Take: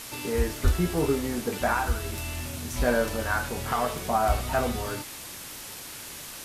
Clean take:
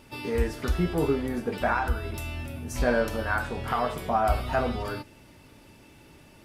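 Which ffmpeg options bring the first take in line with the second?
-filter_complex "[0:a]asplit=3[s0][s1][s2];[s0]afade=t=out:st=0.63:d=0.02[s3];[s1]highpass=f=140:w=0.5412,highpass=f=140:w=1.3066,afade=t=in:st=0.63:d=0.02,afade=t=out:st=0.75:d=0.02[s4];[s2]afade=t=in:st=0.75:d=0.02[s5];[s3][s4][s5]amix=inputs=3:normalize=0,afwtdn=0.011"

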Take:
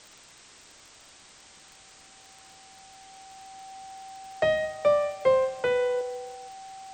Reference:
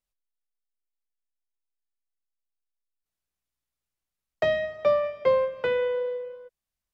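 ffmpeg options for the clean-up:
-af "adeclick=t=4,bandreject=f=770:w=30,afwtdn=0.0035,asetnsamples=n=441:p=0,asendcmd='6.01 volume volume 5dB',volume=1"

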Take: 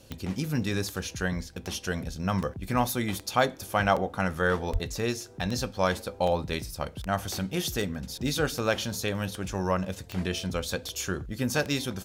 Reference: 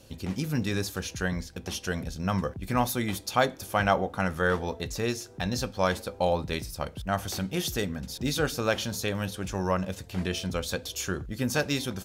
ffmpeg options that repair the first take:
-filter_complex "[0:a]adeclick=t=4,asplit=3[s0][s1][s2];[s0]afade=t=out:st=4.72:d=0.02[s3];[s1]highpass=f=140:w=0.5412,highpass=f=140:w=1.3066,afade=t=in:st=4.72:d=0.02,afade=t=out:st=4.84:d=0.02[s4];[s2]afade=t=in:st=4.84:d=0.02[s5];[s3][s4][s5]amix=inputs=3:normalize=0"

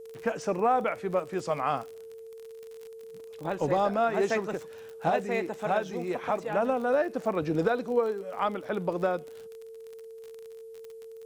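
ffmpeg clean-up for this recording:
-af "adeclick=t=4,bandreject=f=450:w=30,agate=range=0.0891:threshold=0.0141"

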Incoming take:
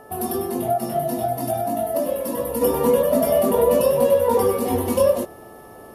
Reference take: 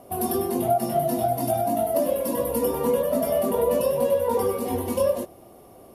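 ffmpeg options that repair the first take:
-af "bandreject=f=434.9:t=h:w=4,bandreject=f=869.8:t=h:w=4,bandreject=f=1304.7:t=h:w=4,bandreject=f=1739.6:t=h:w=4,asetnsamples=n=441:p=0,asendcmd='2.61 volume volume -5dB',volume=1"

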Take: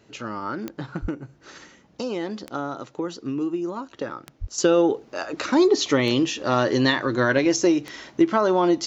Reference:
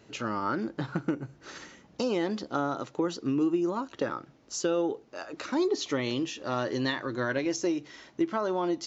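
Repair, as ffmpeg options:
-filter_complex "[0:a]adeclick=t=4,asplit=3[s0][s1][s2];[s0]afade=t=out:st=1.01:d=0.02[s3];[s1]highpass=f=140:w=0.5412,highpass=f=140:w=1.3066,afade=t=in:st=1.01:d=0.02,afade=t=out:st=1.13:d=0.02[s4];[s2]afade=t=in:st=1.13:d=0.02[s5];[s3][s4][s5]amix=inputs=3:normalize=0,asplit=3[s6][s7][s8];[s6]afade=t=out:st=4.4:d=0.02[s9];[s7]highpass=f=140:w=0.5412,highpass=f=140:w=1.3066,afade=t=in:st=4.4:d=0.02,afade=t=out:st=4.52:d=0.02[s10];[s8]afade=t=in:st=4.52:d=0.02[s11];[s9][s10][s11]amix=inputs=3:normalize=0,asetnsamples=n=441:p=0,asendcmd='4.58 volume volume -9.5dB',volume=1"

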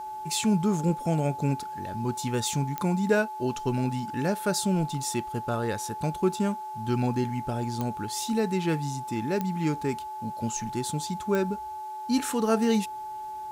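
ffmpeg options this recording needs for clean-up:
-af "adeclick=t=4,bandreject=f=378.8:t=h:w=4,bandreject=f=757.6:t=h:w=4,bandreject=f=1136.4:t=h:w=4,bandreject=f=1515.2:t=h:w=4,bandreject=f=860:w=30,agate=range=0.0891:threshold=0.0355"

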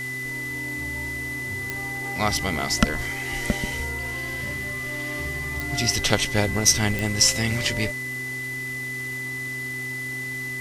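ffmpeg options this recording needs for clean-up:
-af "adeclick=t=4,bandreject=f=128.4:t=h:w=4,bandreject=f=256.8:t=h:w=4,bandreject=f=385.2:t=h:w=4,bandreject=f=2000:w=30,afwtdn=0.0079"

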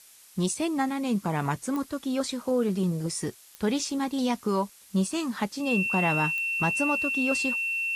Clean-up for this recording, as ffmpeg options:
-af "adeclick=t=4,bandreject=f=2700:w=30,afftdn=nr=20:nf=-53"

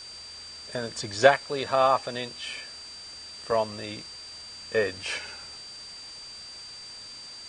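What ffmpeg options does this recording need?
-af "bandreject=f=4700:w=30,afwtdn=0.005"

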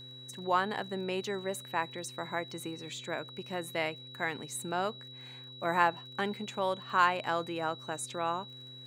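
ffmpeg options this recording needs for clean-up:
-af "adeclick=t=4,bandreject=f=127.3:t=h:w=4,bandreject=f=254.6:t=h:w=4,bandreject=f=381.9:t=h:w=4,bandreject=f=509.2:t=h:w=4,bandreject=f=3900:w=30"

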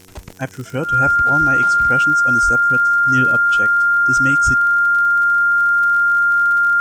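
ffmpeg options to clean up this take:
-af "adeclick=t=4,bandreject=f=93.3:t=h:w=4,bandreject=f=186.6:t=h:w=4,bandreject=f=279.9:t=h:w=4,bandreject=f=373.2:t=h:w=4,bandreject=f=466.5:t=h:w=4,bandreject=f=1400:w=30,agate=range=0.0891:threshold=0.126"

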